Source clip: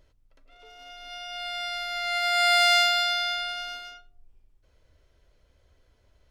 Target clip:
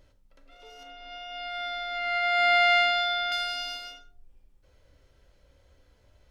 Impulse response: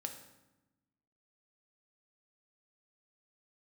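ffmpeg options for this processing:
-filter_complex "[0:a]asettb=1/sr,asplit=3[a][b][c];[a]atrim=end=0.834[d];[b]atrim=start=0.83:end=3.32,asetpts=PTS-STARTPTS,afade=t=in:d=0.004:c=qsin,afade=t=out:st=2.486:d=0.004:c=qsin,lowpass=2.5k[e];[c]atrim=start=3.316[f];[d][e]acrossfade=d=0.004:c1=hsin:c2=qsin[g];[g][f]acrossfade=d=0.004:c1=qsin:c2=hsin[h];[1:a]atrim=start_sample=2205,atrim=end_sample=4410[i];[h][i]afir=irnorm=-1:irlink=0,volume=5dB"

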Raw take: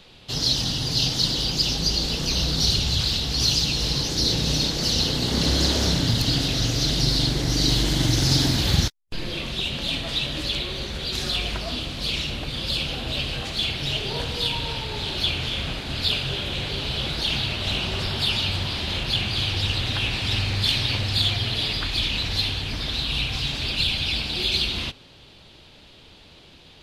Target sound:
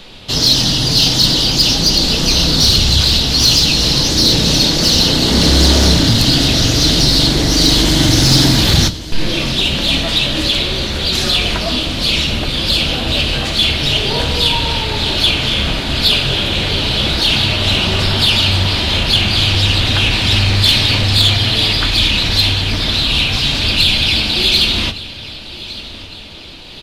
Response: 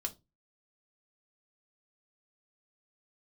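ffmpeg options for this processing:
-filter_complex "[0:a]aecho=1:1:1161|2322|3483|4644:0.126|0.0592|0.0278|0.0131,asplit=2[a][b];[1:a]atrim=start_sample=2205[c];[b][c]afir=irnorm=-1:irlink=0,volume=1.5dB[d];[a][d]amix=inputs=2:normalize=0,acontrast=75,volume=-1dB"

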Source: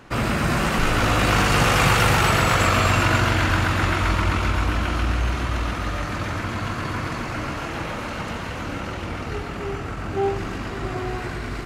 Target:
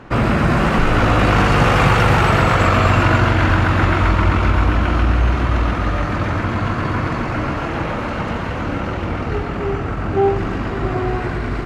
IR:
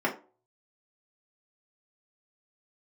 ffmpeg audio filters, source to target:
-filter_complex "[0:a]asplit=2[a][b];[b]alimiter=limit=-14dB:level=0:latency=1:release=268,volume=-2dB[c];[a][c]amix=inputs=2:normalize=0,lowpass=f=1.6k:p=1,volume=3dB"

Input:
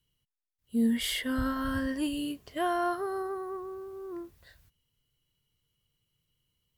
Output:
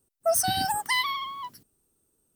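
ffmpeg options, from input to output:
-af "crystalizer=i=3.5:c=0,asetrate=127008,aresample=44100,volume=3.5dB"

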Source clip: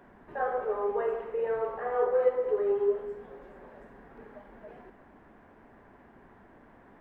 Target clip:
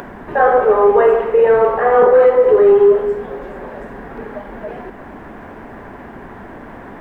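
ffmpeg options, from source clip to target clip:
-af "acompressor=mode=upward:threshold=-48dB:ratio=2.5,apsyclip=24dB,volume=-4.5dB"

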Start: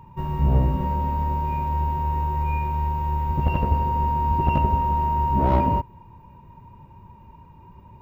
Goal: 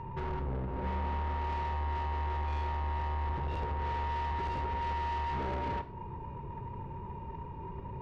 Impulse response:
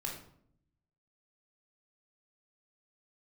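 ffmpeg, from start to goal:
-filter_complex "[0:a]lowpass=3.5k,equalizer=f=430:w=2.6:g=9,acompressor=threshold=-29dB:ratio=16,asoftclip=type=tanh:threshold=-38dB,asplit=2[a][b];[1:a]atrim=start_sample=2205,highshelf=f=7.1k:g=9[c];[b][c]afir=irnorm=-1:irlink=0,volume=-6dB[d];[a][d]amix=inputs=2:normalize=0,volume=2dB"

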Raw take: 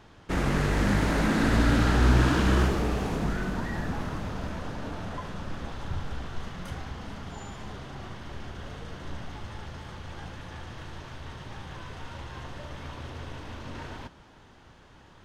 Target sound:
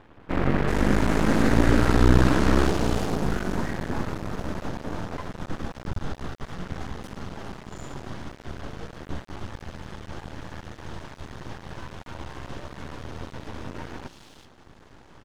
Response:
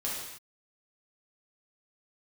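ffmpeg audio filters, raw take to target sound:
-filter_complex "[0:a]equalizer=f=300:w=0.84:g=4,acrossover=split=2900[a][b];[b]adelay=380[c];[a][c]amix=inputs=2:normalize=0,aeval=exprs='max(val(0),0)':c=same,volume=5dB"

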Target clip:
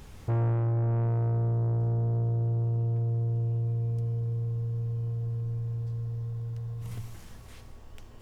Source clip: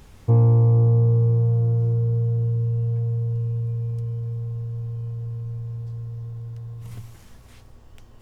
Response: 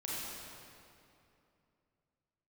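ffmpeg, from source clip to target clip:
-filter_complex "[0:a]asoftclip=type=tanh:threshold=-24.5dB,asplit=2[a][b];[1:a]atrim=start_sample=2205,asetrate=88200,aresample=44100,adelay=44[c];[b][c]afir=irnorm=-1:irlink=0,volume=-7.5dB[d];[a][d]amix=inputs=2:normalize=0"

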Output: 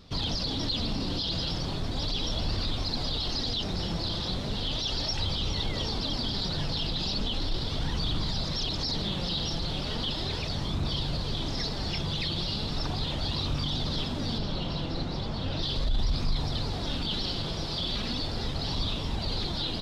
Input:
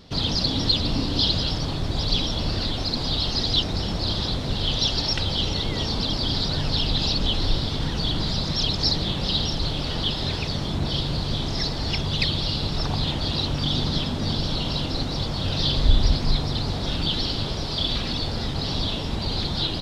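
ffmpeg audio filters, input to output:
-filter_complex "[0:a]asettb=1/sr,asplit=3[a][b][c];[a]atrim=end=14.384[d];[b]atrim=start=14.38:end=15.63,asetpts=PTS-STARTPTS,afade=t=in:d=0.004:c=qsin,afade=t=out:st=1.246:d=0.004:c=qsin,lowpass=f=2.8k:p=1[e];[c]atrim=start=15.626[f];[d][e]acrossfade=d=0.004:c1=hsin:c2=qsin[g];[g][f]acrossfade=d=0.004:c1=qsin:c2=hsin,alimiter=limit=-17.5dB:level=0:latency=1:release=11,flanger=delay=0.8:depth=5.2:regen=67:speed=0.37:shape=sinusoidal"

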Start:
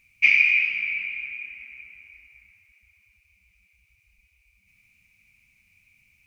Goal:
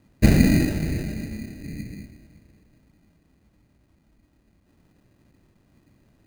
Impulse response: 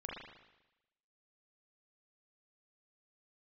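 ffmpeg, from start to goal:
-filter_complex "[0:a]asettb=1/sr,asplit=3[a][b][c];[a]atrim=end=1.644[d];[b]atrim=start=1.64:end=2.06,asetpts=PTS-STARTPTS,afade=t=in:d=0.004:c=qsin,afade=t=out:st=0.416:d=0.004:c=qsin,equalizer=f=2.4k:t=o:w=0.28:g=9[e];[c]atrim=start=2.056[f];[d][e]acrossfade=d=0.004:c1=hsin:c2=qsin[g];[g][f]acrossfade=d=0.004:c1=qsin:c2=hsin,acrusher=samples=20:mix=1:aa=0.000001,volume=2.5dB"

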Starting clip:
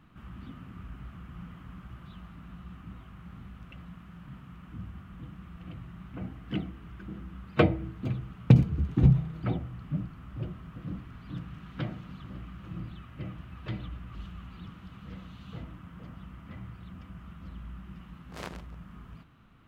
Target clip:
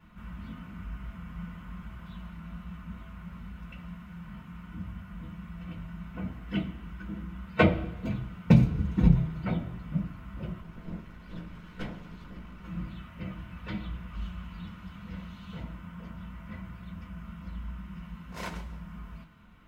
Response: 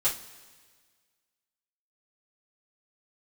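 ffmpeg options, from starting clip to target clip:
-filter_complex "[0:a]asettb=1/sr,asplit=3[a][b][c];[a]atrim=end=10.604[d];[b]atrim=start=10.6:end=12.63,asetpts=PTS-STARTPTS,afade=t=in:d=0.004:c=qsin,afade=t=out:st=2.026:d=0.004:c=qsin,aeval=exprs='max(val(0),0)':c=same[e];[c]atrim=start=12.626[f];[d][e]acrossfade=d=0.004:c1=hsin:c2=qsin[g];[g][f]acrossfade=d=0.004:c1=qsin:c2=hsin[h];[1:a]atrim=start_sample=2205,asetrate=79380,aresample=44100[i];[h][i]afir=irnorm=-1:irlink=0"

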